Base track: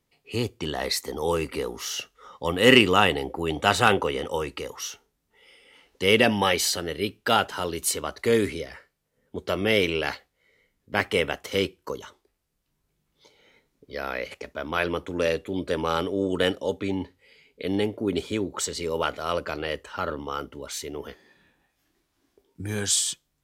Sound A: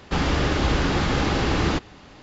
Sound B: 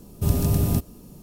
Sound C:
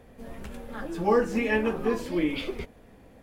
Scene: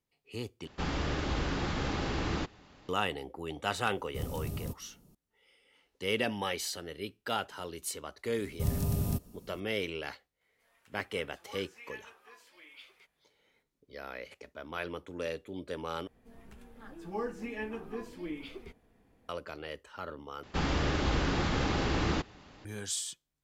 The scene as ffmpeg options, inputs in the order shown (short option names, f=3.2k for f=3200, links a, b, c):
-filter_complex "[1:a]asplit=2[a][b];[2:a]asplit=2[c][d];[3:a]asplit=2[e][f];[0:a]volume=-12dB[g];[d]bandreject=f=320:w=6.8[h];[e]highpass=1.3k[i];[f]bandreject=f=560:w=5.8[j];[g]asplit=4[k][l][m][n];[k]atrim=end=0.674[o];[a]atrim=end=2.22,asetpts=PTS-STARTPTS,volume=-11dB[p];[l]atrim=start=2.886:end=16.074[q];[j]atrim=end=3.22,asetpts=PTS-STARTPTS,volume=-13dB[r];[m]atrim=start=19.286:end=20.434[s];[b]atrim=end=2.22,asetpts=PTS-STARTPTS,volume=-8dB[t];[n]atrim=start=22.646[u];[c]atrim=end=1.22,asetpts=PTS-STARTPTS,volume=-16.5dB,afade=t=in:d=0.004:c=hsin,afade=t=out:st=1.216:d=0.004:c=hsin,adelay=173313S[v];[h]atrim=end=1.22,asetpts=PTS-STARTPTS,volume=-9.5dB,afade=t=in:d=0.004:c=hsin,afade=t=out:st=1.216:d=0.004:c=hsin,adelay=8380[w];[i]atrim=end=3.22,asetpts=PTS-STARTPTS,volume=-16dB,afade=t=in:d=0.004:c=hsin,afade=t=out:st=3.216:d=0.004:c=hsin,adelay=10410[x];[o][p]acrossfade=d=0.004:c1=hsin:c2=hsin[y];[y][q]acrossfade=d=0.004:c1=hsin:c2=hsin[z];[z][r]acrossfade=d=0.004:c1=hsin:c2=hsin[aa];[aa][s]acrossfade=d=0.004:c1=hsin:c2=hsin[ab];[ab][t]acrossfade=d=0.004:c1=hsin:c2=hsin[ac];[ac][u]acrossfade=d=0.004:c1=hsin:c2=hsin[ad];[ad][v][w][x]amix=inputs=4:normalize=0"